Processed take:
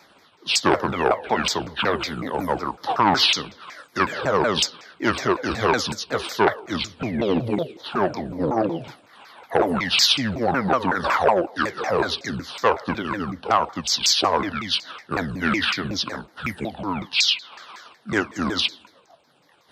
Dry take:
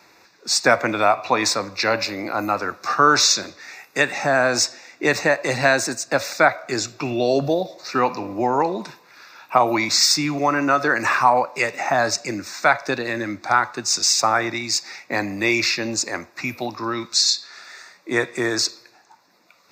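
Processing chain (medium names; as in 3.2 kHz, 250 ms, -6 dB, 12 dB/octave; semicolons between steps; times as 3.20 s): sawtooth pitch modulation -10.5 st, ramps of 185 ms; transformer saturation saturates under 1 kHz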